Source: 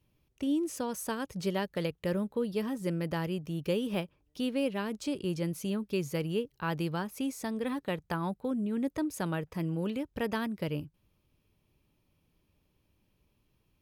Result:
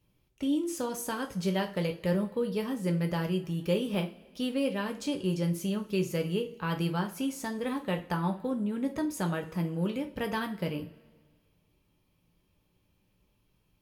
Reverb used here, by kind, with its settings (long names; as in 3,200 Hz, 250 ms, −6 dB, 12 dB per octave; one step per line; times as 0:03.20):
coupled-rooms reverb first 0.28 s, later 1.7 s, from −22 dB, DRR 3 dB